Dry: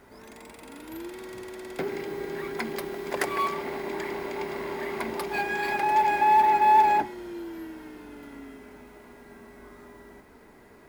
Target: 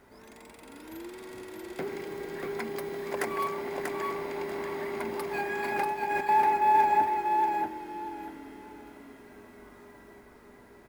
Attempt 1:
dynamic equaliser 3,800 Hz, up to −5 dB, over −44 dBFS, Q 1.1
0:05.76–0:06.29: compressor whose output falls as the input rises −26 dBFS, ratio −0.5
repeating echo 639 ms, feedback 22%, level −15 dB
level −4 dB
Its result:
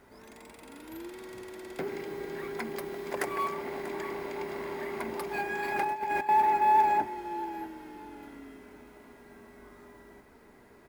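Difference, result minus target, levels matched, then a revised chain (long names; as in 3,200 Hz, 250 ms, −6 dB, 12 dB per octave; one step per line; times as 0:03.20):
echo-to-direct −11 dB
dynamic equaliser 3,800 Hz, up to −5 dB, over −44 dBFS, Q 1.1
0:05.76–0:06.29: compressor whose output falls as the input rises −26 dBFS, ratio −0.5
repeating echo 639 ms, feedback 22%, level −4 dB
level −4 dB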